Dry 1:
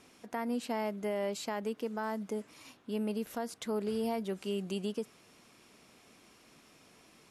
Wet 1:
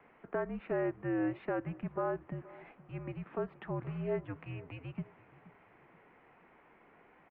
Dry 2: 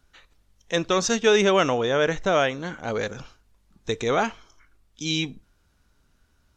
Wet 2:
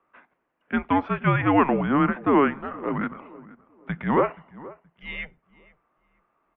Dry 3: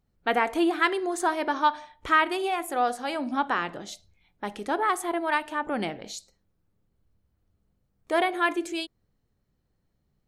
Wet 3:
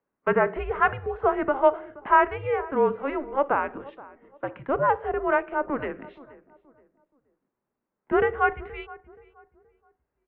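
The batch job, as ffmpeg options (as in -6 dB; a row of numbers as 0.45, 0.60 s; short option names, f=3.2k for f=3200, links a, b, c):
-filter_complex "[0:a]highpass=f=310:t=q:w=0.5412,highpass=f=310:t=q:w=1.307,lowpass=f=3k:t=q:w=0.5176,lowpass=f=3k:t=q:w=0.7071,lowpass=f=3k:t=q:w=1.932,afreqshift=-280,acrossover=split=190 2100:gain=0.178 1 0.141[a][b][c];[a][b][c]amix=inputs=3:normalize=0,asplit=2[d][e];[e]adelay=475,lowpass=f=1.4k:p=1,volume=-19dB,asplit=2[f][g];[g]adelay=475,lowpass=f=1.4k:p=1,volume=0.34,asplit=2[h][i];[i]adelay=475,lowpass=f=1.4k:p=1,volume=0.34[j];[d][f][h][j]amix=inputs=4:normalize=0,volume=4dB"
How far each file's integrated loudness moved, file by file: -2.0, 0.0, +2.0 LU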